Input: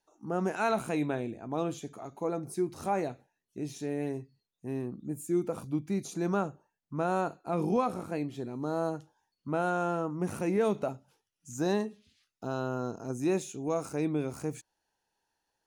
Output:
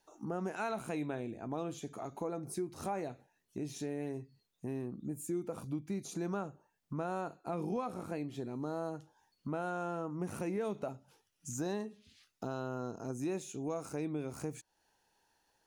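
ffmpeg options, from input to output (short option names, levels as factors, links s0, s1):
-af "acompressor=threshold=0.00398:ratio=2.5,volume=2.11"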